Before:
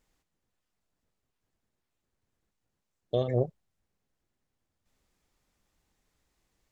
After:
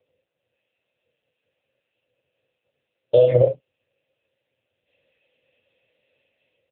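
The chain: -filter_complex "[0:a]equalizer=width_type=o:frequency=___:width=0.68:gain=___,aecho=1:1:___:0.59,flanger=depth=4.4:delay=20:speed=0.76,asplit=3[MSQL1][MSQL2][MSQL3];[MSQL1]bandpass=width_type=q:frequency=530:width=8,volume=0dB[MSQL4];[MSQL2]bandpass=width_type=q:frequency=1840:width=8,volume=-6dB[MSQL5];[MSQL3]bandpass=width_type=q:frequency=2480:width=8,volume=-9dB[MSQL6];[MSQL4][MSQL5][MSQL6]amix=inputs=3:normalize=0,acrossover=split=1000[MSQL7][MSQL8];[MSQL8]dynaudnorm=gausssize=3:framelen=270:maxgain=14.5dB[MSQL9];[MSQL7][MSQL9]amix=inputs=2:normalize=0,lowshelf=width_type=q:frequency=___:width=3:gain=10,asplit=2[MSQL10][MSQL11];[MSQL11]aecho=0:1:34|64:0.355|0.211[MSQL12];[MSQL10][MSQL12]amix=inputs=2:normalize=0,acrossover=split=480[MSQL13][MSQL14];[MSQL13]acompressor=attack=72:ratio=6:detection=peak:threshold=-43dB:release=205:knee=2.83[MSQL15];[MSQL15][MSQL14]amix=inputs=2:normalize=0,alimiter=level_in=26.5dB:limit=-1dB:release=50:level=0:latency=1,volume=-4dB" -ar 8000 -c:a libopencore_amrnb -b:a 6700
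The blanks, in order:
1700, -14.5, 1.9, 170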